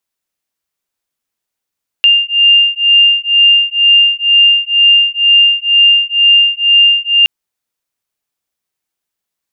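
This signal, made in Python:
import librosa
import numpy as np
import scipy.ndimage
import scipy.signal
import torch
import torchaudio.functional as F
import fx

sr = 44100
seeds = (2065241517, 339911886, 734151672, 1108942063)

y = fx.two_tone_beats(sr, length_s=5.22, hz=2800.0, beat_hz=2.1, level_db=-9.0)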